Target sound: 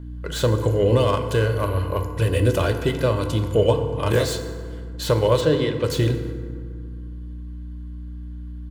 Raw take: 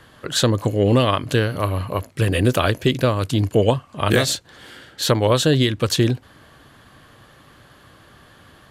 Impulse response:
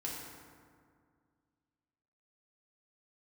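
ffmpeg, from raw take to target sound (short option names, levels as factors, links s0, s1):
-filter_complex "[0:a]agate=range=0.178:threshold=0.0112:ratio=16:detection=peak,aecho=1:1:2:0.47,aeval=exprs='val(0)+0.0282*(sin(2*PI*60*n/s)+sin(2*PI*2*60*n/s)/2+sin(2*PI*3*60*n/s)/3+sin(2*PI*4*60*n/s)/4+sin(2*PI*5*60*n/s)/5)':c=same,acrossover=split=1100[s0][s1];[s1]asoftclip=type=tanh:threshold=0.0668[s2];[s0][s2]amix=inputs=2:normalize=0,asplit=3[s3][s4][s5];[s3]afade=t=out:st=5.4:d=0.02[s6];[s4]highpass=160,lowpass=4600,afade=t=in:st=5.4:d=0.02,afade=t=out:st=5.83:d=0.02[s7];[s5]afade=t=in:st=5.83:d=0.02[s8];[s6][s7][s8]amix=inputs=3:normalize=0,asplit=2[s9][s10];[1:a]atrim=start_sample=2205[s11];[s10][s11]afir=irnorm=-1:irlink=0,volume=0.708[s12];[s9][s12]amix=inputs=2:normalize=0,volume=0.473"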